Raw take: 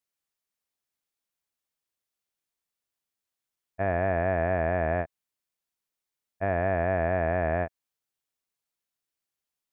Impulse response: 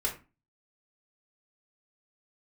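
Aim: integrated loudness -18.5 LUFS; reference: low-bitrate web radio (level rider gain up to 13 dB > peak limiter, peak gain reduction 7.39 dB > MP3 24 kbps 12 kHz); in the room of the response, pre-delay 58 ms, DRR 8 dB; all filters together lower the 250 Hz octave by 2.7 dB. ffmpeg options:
-filter_complex "[0:a]equalizer=f=250:t=o:g=-4,asplit=2[s0][s1];[1:a]atrim=start_sample=2205,adelay=58[s2];[s1][s2]afir=irnorm=-1:irlink=0,volume=0.211[s3];[s0][s3]amix=inputs=2:normalize=0,dynaudnorm=m=4.47,alimiter=limit=0.0891:level=0:latency=1,volume=5.01" -ar 12000 -c:a libmp3lame -b:a 24k

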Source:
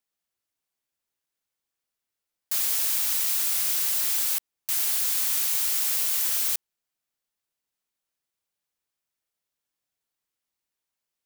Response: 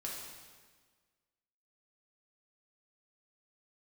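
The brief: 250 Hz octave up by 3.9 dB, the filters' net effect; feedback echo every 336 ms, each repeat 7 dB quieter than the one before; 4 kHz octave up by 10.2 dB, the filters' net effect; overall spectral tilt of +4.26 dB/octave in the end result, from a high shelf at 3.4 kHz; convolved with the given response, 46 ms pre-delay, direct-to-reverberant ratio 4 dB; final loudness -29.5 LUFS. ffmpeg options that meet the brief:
-filter_complex "[0:a]equalizer=f=250:t=o:g=5,highshelf=f=3400:g=9,equalizer=f=4000:t=o:g=6,aecho=1:1:336|672|1008|1344|1680:0.447|0.201|0.0905|0.0407|0.0183,asplit=2[s0][s1];[1:a]atrim=start_sample=2205,adelay=46[s2];[s1][s2]afir=irnorm=-1:irlink=0,volume=0.631[s3];[s0][s3]amix=inputs=2:normalize=0,volume=0.126"

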